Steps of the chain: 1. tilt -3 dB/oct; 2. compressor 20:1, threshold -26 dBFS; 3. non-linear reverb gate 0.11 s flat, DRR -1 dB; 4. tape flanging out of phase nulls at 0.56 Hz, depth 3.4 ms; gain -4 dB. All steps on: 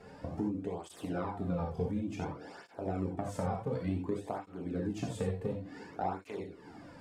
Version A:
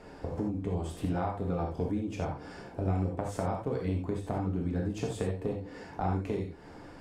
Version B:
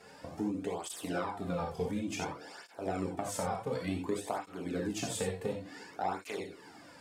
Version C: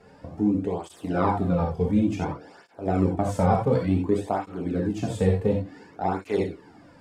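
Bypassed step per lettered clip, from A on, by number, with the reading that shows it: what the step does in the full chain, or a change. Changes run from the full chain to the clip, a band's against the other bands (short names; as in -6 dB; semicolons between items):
4, 125 Hz band +2.5 dB; 1, 8 kHz band +11.0 dB; 2, mean gain reduction 8.0 dB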